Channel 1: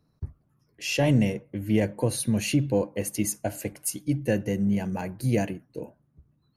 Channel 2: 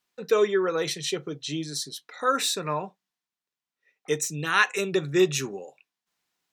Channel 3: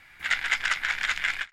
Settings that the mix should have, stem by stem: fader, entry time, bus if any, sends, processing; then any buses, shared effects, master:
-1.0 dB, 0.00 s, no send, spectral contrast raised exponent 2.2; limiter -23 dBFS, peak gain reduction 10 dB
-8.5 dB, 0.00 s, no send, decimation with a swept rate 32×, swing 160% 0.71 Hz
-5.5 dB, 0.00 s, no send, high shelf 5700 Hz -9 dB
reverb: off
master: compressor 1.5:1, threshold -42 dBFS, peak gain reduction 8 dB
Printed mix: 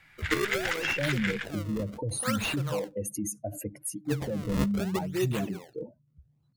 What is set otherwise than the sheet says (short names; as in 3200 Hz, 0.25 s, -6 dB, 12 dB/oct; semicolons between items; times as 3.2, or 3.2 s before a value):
stem 3: missing high shelf 5700 Hz -9 dB; master: missing compressor 1.5:1, threshold -42 dBFS, peak gain reduction 8 dB